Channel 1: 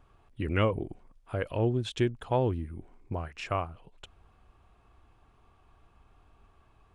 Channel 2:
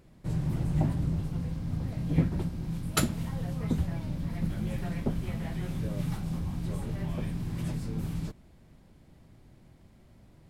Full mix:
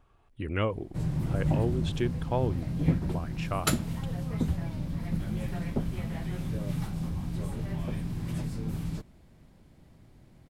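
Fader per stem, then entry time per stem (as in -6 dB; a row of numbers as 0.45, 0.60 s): -2.5, 0.0 dB; 0.00, 0.70 s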